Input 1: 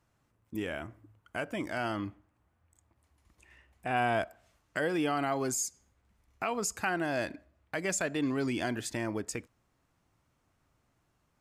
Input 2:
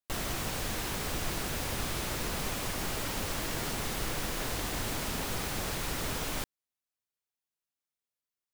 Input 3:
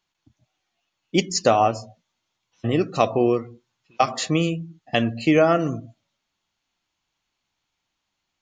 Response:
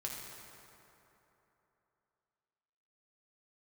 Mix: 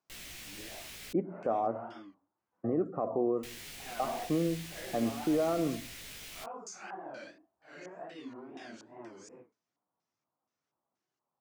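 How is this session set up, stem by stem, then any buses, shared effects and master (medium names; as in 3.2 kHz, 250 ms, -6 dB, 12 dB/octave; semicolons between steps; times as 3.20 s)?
-14.0 dB, 0.00 s, bus A, no send, phase randomisation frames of 200 ms; wow and flutter 130 cents; LFO low-pass square 2.1 Hz 930–5900 Hz
-16.0 dB, 0.00 s, muted 1.13–3.43 s, no bus, no send, resonant high shelf 1.6 kHz +9.5 dB, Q 1.5; chorus 0.4 Hz, delay 16.5 ms, depth 2.5 ms
-4.0 dB, 0.00 s, bus A, no send, Bessel low-pass 870 Hz, order 8
bus A: 0.0 dB, high-pass 220 Hz 12 dB/octave; peak limiter -21.5 dBFS, peak gain reduction 11 dB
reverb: none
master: none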